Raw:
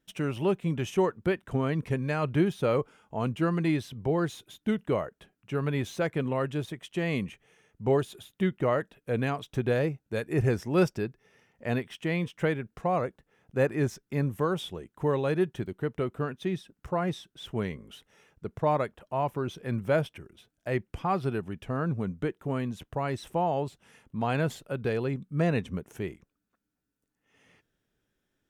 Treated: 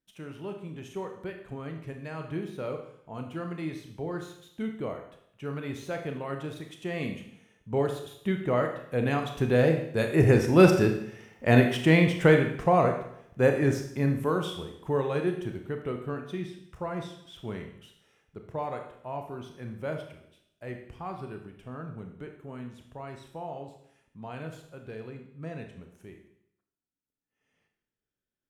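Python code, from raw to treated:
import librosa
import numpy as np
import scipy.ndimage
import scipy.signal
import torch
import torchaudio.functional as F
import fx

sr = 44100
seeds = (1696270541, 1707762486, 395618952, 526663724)

y = fx.doppler_pass(x, sr, speed_mps=6, closest_m=6.1, pass_at_s=11.5)
y = fx.rev_schroeder(y, sr, rt60_s=0.71, comb_ms=25, drr_db=4.0)
y = y * 10.0 ** (9.0 / 20.0)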